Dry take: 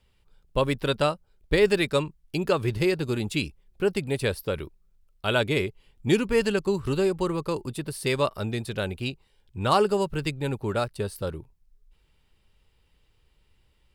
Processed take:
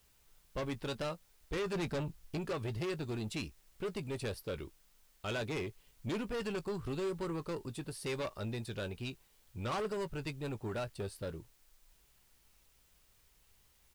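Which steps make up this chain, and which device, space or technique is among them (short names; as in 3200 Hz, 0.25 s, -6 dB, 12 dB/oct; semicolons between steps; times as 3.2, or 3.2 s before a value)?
1.73–2.38 low shelf 390 Hz +10.5 dB; compact cassette (soft clip -25.5 dBFS, distortion -7 dB; LPF 10000 Hz; wow and flutter; white noise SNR 30 dB); doubler 18 ms -14 dB; gain -7.5 dB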